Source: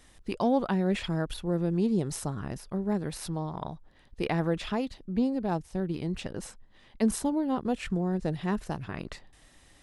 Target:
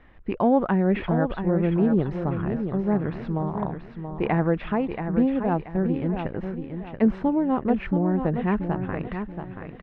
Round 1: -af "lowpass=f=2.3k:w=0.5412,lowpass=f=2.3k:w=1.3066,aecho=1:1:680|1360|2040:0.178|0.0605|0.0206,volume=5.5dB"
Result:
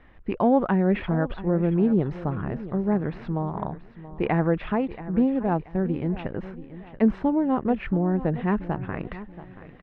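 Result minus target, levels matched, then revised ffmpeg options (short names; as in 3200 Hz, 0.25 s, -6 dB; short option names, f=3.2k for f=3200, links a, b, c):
echo-to-direct -7.5 dB
-af "lowpass=f=2.3k:w=0.5412,lowpass=f=2.3k:w=1.3066,aecho=1:1:680|1360|2040|2720:0.422|0.143|0.0487|0.0166,volume=5.5dB"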